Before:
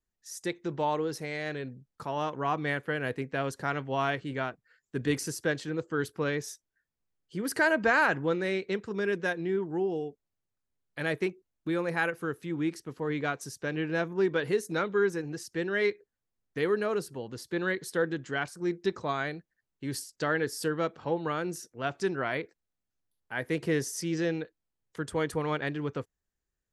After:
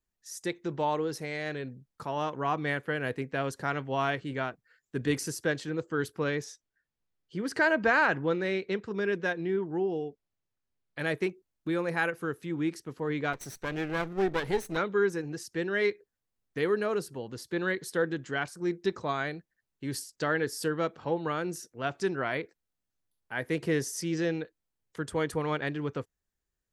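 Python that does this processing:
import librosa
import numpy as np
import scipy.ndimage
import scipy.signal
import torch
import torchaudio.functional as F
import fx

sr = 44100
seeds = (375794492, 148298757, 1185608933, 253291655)

y = fx.lowpass(x, sr, hz=5900.0, slope=12, at=(6.44, 10.99))
y = fx.lower_of_two(y, sr, delay_ms=0.51, at=(13.33, 14.77))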